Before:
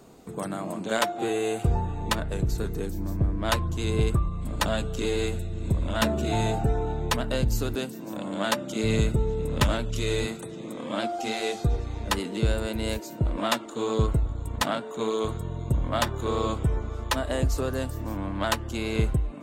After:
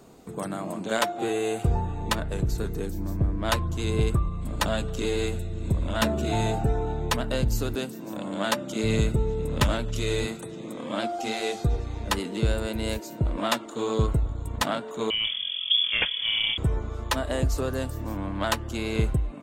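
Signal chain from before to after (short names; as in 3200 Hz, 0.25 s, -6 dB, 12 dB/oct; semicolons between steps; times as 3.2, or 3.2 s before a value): speakerphone echo 0.27 s, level -28 dB; 15.1–16.58 inverted band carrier 3400 Hz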